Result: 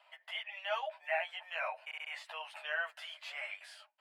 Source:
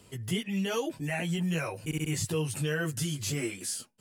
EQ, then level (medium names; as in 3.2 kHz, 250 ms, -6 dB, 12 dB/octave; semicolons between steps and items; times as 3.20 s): rippled Chebyshev high-pass 600 Hz, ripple 3 dB; distance through air 440 m; +4.5 dB